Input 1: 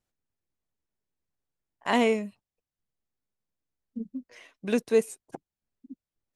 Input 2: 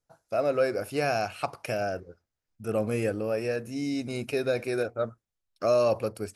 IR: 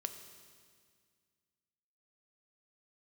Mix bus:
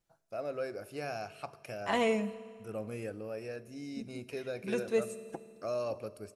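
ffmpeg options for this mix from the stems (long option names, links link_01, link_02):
-filter_complex "[0:a]aecho=1:1:6:0.44,volume=-2.5dB,asplit=2[link_01][link_02];[link_02]volume=-8dB[link_03];[1:a]volume=-15dB,asplit=3[link_04][link_05][link_06];[link_05]volume=-5dB[link_07];[link_06]apad=whole_len=280613[link_08];[link_01][link_08]sidechaincompress=threshold=-53dB:ratio=8:attack=16:release=441[link_09];[2:a]atrim=start_sample=2205[link_10];[link_03][link_07]amix=inputs=2:normalize=0[link_11];[link_11][link_10]afir=irnorm=-1:irlink=0[link_12];[link_09][link_04][link_12]amix=inputs=3:normalize=0"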